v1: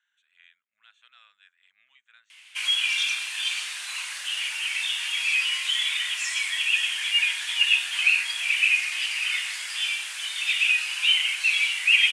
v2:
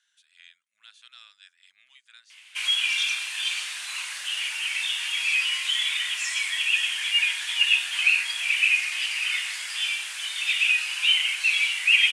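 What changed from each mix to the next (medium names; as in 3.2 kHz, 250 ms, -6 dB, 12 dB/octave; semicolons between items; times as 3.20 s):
speech: remove boxcar filter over 9 samples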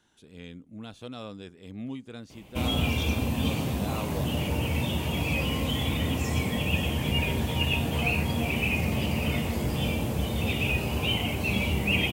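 background -10.0 dB; master: remove elliptic band-pass 1.6–9.5 kHz, stop band 60 dB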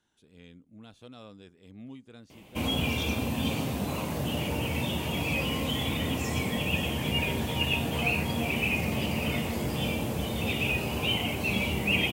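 speech -8.0 dB; background: add bass shelf 81 Hz -11 dB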